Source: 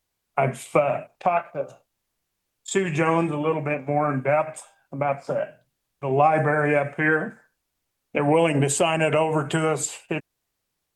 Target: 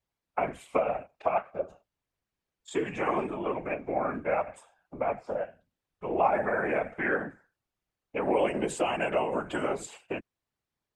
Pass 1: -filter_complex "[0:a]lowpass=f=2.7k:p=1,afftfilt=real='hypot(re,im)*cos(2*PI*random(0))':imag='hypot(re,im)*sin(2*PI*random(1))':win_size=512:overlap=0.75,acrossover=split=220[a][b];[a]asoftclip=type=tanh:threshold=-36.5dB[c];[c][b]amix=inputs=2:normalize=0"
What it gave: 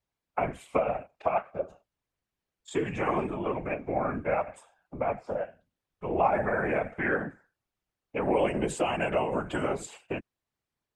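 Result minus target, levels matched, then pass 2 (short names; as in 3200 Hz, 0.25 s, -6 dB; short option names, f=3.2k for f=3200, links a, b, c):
soft clip: distortion -6 dB
-filter_complex "[0:a]lowpass=f=2.7k:p=1,afftfilt=real='hypot(re,im)*cos(2*PI*random(0))':imag='hypot(re,im)*sin(2*PI*random(1))':win_size=512:overlap=0.75,acrossover=split=220[a][b];[a]asoftclip=type=tanh:threshold=-48.5dB[c];[c][b]amix=inputs=2:normalize=0"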